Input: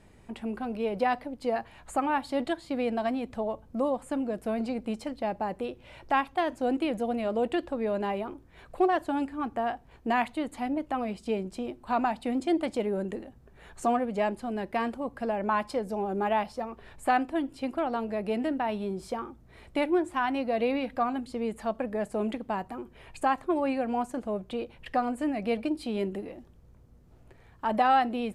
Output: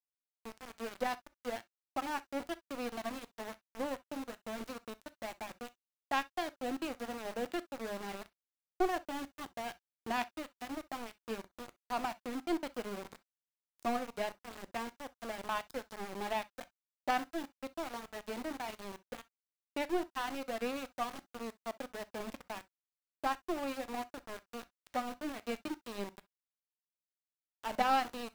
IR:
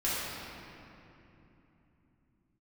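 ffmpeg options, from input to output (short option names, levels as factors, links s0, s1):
-filter_complex "[0:a]lowpass=f=8400:w=0.5412,lowpass=f=8400:w=1.3066,bass=f=250:g=1,treble=f=4000:g=8,bandreject=f=105.4:t=h:w=4,bandreject=f=210.8:t=h:w=4,aeval=exprs='0.266*(cos(1*acos(clip(val(0)/0.266,-1,1)))-cos(1*PI/2))+0.0299*(cos(2*acos(clip(val(0)/0.266,-1,1)))-cos(2*PI/2))+0.0531*(cos(3*acos(clip(val(0)/0.266,-1,1)))-cos(3*PI/2))+0.00299*(cos(7*acos(clip(val(0)/0.266,-1,1)))-cos(7*PI/2))':c=same,aeval=exprs='val(0)*gte(abs(val(0)),0.0141)':c=same,asplit=2[s0][s1];[1:a]atrim=start_sample=2205,atrim=end_sample=3087[s2];[s1][s2]afir=irnorm=-1:irlink=0,volume=0.126[s3];[s0][s3]amix=inputs=2:normalize=0,volume=0.668"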